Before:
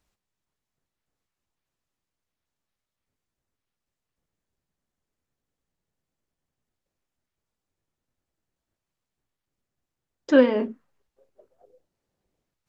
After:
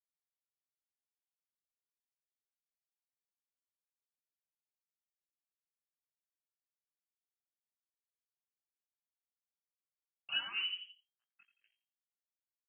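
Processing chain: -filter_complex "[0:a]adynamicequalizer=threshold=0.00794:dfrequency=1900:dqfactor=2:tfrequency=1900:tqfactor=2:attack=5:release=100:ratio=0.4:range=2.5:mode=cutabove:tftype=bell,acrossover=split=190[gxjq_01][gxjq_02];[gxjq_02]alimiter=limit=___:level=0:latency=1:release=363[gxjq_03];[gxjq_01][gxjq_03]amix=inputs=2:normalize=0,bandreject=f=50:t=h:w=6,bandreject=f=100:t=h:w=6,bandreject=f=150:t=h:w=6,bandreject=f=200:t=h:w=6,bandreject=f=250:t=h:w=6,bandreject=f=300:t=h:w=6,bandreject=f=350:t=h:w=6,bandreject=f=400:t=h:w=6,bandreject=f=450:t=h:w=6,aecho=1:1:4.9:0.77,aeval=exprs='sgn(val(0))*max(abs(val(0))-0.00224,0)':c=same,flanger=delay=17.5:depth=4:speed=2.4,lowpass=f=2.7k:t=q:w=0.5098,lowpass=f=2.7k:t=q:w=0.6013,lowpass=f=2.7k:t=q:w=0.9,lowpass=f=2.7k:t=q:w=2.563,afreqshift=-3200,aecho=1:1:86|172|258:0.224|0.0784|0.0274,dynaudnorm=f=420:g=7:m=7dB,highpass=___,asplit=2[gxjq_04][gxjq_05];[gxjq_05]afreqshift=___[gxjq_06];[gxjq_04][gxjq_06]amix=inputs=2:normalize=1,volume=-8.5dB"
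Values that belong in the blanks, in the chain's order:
-16dB, 140, 1.2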